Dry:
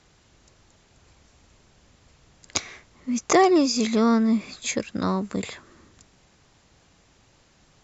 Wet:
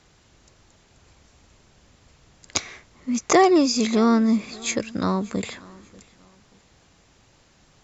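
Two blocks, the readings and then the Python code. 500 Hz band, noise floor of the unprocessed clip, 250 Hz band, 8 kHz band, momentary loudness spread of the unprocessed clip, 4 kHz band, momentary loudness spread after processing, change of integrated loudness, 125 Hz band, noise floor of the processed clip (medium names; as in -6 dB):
+1.5 dB, -60 dBFS, +1.5 dB, no reading, 13 LU, +1.5 dB, 14 LU, +1.5 dB, +1.5 dB, -58 dBFS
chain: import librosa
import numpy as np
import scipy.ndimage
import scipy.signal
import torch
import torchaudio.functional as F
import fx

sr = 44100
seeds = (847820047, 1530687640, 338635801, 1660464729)

y = fx.echo_feedback(x, sr, ms=587, feedback_pct=32, wet_db=-23.0)
y = y * librosa.db_to_amplitude(1.5)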